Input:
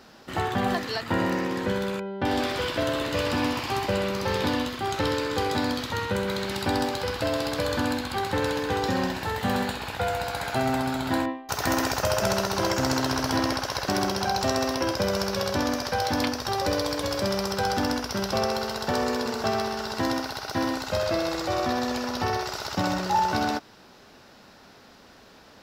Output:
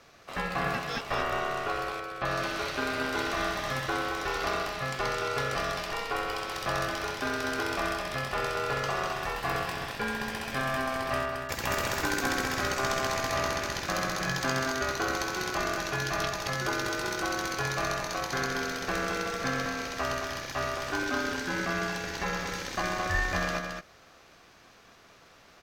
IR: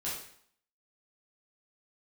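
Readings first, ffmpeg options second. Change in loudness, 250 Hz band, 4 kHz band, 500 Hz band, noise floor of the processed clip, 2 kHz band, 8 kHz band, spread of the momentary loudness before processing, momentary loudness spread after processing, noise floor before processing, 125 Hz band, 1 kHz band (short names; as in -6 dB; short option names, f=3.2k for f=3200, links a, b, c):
-4.0 dB, -9.0 dB, -4.5 dB, -6.0 dB, -56 dBFS, +1.5 dB, -2.0 dB, 4 LU, 4 LU, -52 dBFS, -5.5 dB, -4.0 dB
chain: -af "aeval=exprs='val(0)*sin(2*PI*920*n/s)':c=same,aecho=1:1:219:0.531,volume=-2.5dB"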